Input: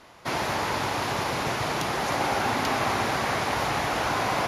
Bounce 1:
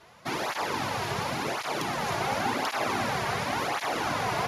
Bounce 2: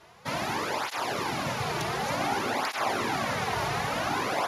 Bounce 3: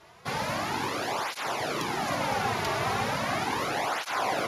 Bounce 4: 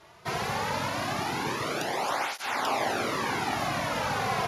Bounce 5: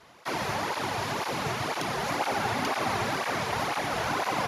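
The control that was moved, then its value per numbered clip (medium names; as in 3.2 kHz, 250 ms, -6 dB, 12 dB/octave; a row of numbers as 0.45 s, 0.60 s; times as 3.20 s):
cancelling through-zero flanger, nulls at: 0.92 Hz, 0.55 Hz, 0.37 Hz, 0.21 Hz, 2 Hz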